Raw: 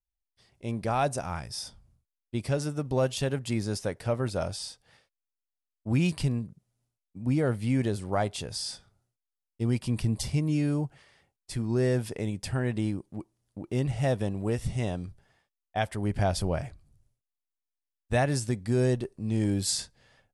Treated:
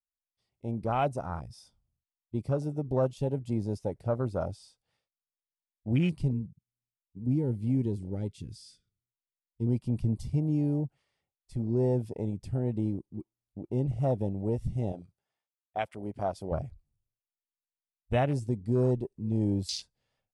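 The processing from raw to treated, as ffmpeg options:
-filter_complex "[0:a]asettb=1/sr,asplit=3[s0][s1][s2];[s0]atrim=end=6.334[s3];[s1]atrim=start=6.33:end=9.67,asetpts=PTS-STARTPTS,afade=t=in:d=0.004:c=qsin,afade=t=out:st=3.336:d=0.004:c=qsin,asuperstop=centerf=820:order=4:qfactor=0.65[s4];[s2]atrim=start=9.666[s5];[s3][s4]acrossfade=d=0.004:c1=hsin:c2=qsin[s6];[s6][s5]acrossfade=d=0.004:c1=qsin:c2=hsin,asettb=1/sr,asplit=3[s7][s8][s9];[s7]atrim=end=14.924[s10];[s8]atrim=start=14.92:end=16.52,asetpts=PTS-STARTPTS,afade=t=in:d=0.004:c=qsin,afade=t=out:st=1.596:d=0.004:c=qsin,highpass=f=430:p=1[s11];[s9]atrim=start=16.516[s12];[s10][s11]acrossfade=d=0.004:c1=hsin:c2=qsin[s13];[s13][s12]acrossfade=d=0.004:c1=qsin:c2=hsin,afwtdn=0.0224,equalizer=f=1700:t=o:w=0.27:g=-7.5,volume=0.891"

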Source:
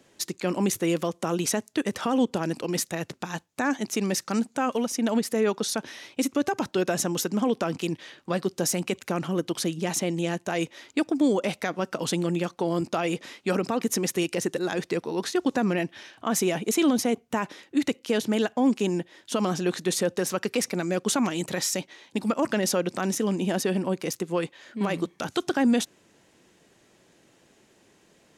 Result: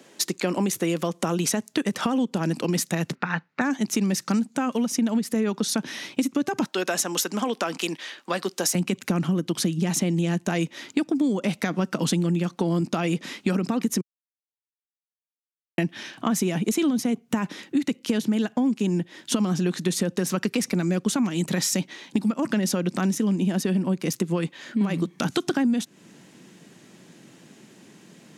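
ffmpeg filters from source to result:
-filter_complex "[0:a]asettb=1/sr,asplit=3[s0][s1][s2];[s0]atrim=end=3.154[s3];[s1]atrim=start=3.15:end=3.61,asetpts=PTS-STARTPTS,afade=t=in:d=0.004:c=qsin,afade=t=out:st=0.456:d=0.004:c=qsin,highpass=160,equalizer=f=210:t=q:w=4:g=-7,equalizer=f=320:t=q:w=4:g=-8,equalizer=f=650:t=q:w=4:g=-4,equalizer=f=1400:t=q:w=4:g=8,equalizer=f=2000:t=q:w=4:g=6,equalizer=f=3300:t=q:w=4:g=-9,lowpass=f=3700:w=0.5412,lowpass=f=3700:w=1.3066[s4];[s2]atrim=start=3.606[s5];[s3][s4]acrossfade=d=0.004:c1=hsin:c2=qsin[s6];[s6][s5]acrossfade=d=0.004:c1=qsin:c2=hsin,asettb=1/sr,asplit=3[s7][s8][s9];[s7]atrim=end=6.644[s10];[s8]atrim=start=6.64:end=8.75,asetpts=PTS-STARTPTS,afade=t=in:d=0.004:c=qsin,afade=t=out:st=2.106:d=0.004:c=qsin,highpass=550[s11];[s9]atrim=start=8.746[s12];[s10][s11]acrossfade=d=0.004:c1=hsin:c2=qsin[s13];[s13][s12]acrossfade=d=0.004:c1=qsin:c2=hsin,asplit=3[s14][s15][s16];[s14]atrim=end=14.01,asetpts=PTS-STARTPTS,afade=t=out:st=14.006:d=0.004:c=hsin[s17];[s15]atrim=start=14.01:end=15.78,asetpts=PTS-STARTPTS,volume=0[s18];[s16]atrim=start=15.78,asetpts=PTS-STARTPTS,afade=t=in:d=0.004:c=hsin[s19];[s17][s18][s19]concat=n=3:v=0:a=1,highpass=f=160:w=0.5412,highpass=f=160:w=1.3066,asubboost=boost=5:cutoff=210,acompressor=threshold=0.0355:ratio=6,volume=2.51"

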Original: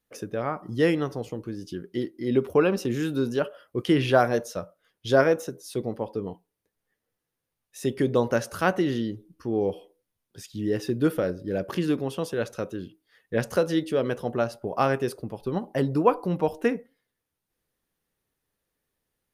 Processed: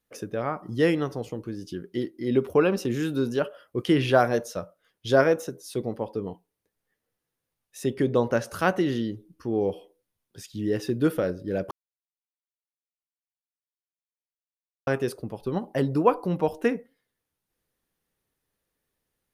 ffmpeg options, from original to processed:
-filter_complex "[0:a]asettb=1/sr,asplit=3[s0][s1][s2];[s0]atrim=end=7.834[s3];[s1]atrim=start=7.83:end=8.46,asetpts=PTS-STARTPTS,afade=t=in:d=0.004:c=qsin,afade=t=out:st=0.626:d=0.004:c=qsin,highshelf=f=4400:g=-5.5[s4];[s2]atrim=start=8.456[s5];[s3][s4]acrossfade=d=0.004:c1=hsin:c2=qsin[s6];[s6][s5]acrossfade=d=0.004:c1=qsin:c2=hsin,asplit=3[s7][s8][s9];[s7]atrim=end=11.71,asetpts=PTS-STARTPTS,afade=t=out:st=11.706:d=0.004:c=hsin[s10];[s8]atrim=start=11.71:end=14.87,asetpts=PTS-STARTPTS,volume=0[s11];[s9]atrim=start=14.87,asetpts=PTS-STARTPTS,afade=t=in:d=0.004:c=hsin[s12];[s10][s11][s12]concat=n=3:v=0:a=1"

